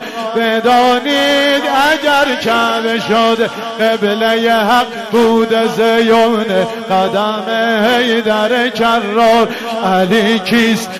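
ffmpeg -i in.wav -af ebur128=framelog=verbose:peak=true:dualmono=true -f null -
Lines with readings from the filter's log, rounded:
Integrated loudness:
  I:          -9.0 LUFS
  Threshold: -19.0 LUFS
Loudness range:
  LRA:         1.0 LU
  Threshold: -29.1 LUFS
  LRA low:    -9.5 LUFS
  LRA high:   -8.6 LUFS
True peak:
  Peak:       -4.3 dBFS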